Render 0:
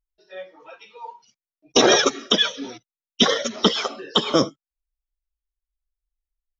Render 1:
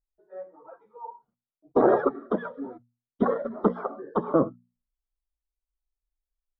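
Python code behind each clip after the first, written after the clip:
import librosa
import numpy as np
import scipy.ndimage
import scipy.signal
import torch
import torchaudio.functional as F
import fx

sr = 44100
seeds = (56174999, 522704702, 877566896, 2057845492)

y = scipy.signal.sosfilt(scipy.signal.cheby2(4, 40, 2500.0, 'lowpass', fs=sr, output='sos'), x)
y = fx.hum_notches(y, sr, base_hz=60, count=4)
y = y * librosa.db_to_amplitude(-2.5)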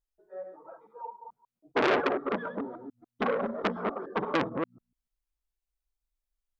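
y = fx.reverse_delay(x, sr, ms=145, wet_db=-6.5)
y = fx.transformer_sat(y, sr, knee_hz=2000.0)
y = y * librosa.db_to_amplitude(-1.0)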